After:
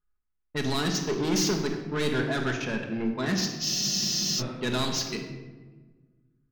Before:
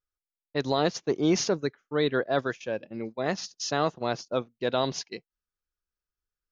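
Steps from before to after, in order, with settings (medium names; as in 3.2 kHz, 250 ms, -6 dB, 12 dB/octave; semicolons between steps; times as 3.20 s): level-controlled noise filter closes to 1.7 kHz, open at -24.5 dBFS; peaking EQ 580 Hz -13.5 dB 0.96 oct; in parallel at -3 dB: peak limiter -25.5 dBFS, peak gain reduction 9 dB; on the sum: saturation -29.5 dBFS, distortion -7 dB; on a send at -2 dB: reverberation RT60 1.4 s, pre-delay 5 ms; on the sum: spectral freeze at 3.66 s, 0.73 s; tape noise reduction on one side only decoder only; trim +4.5 dB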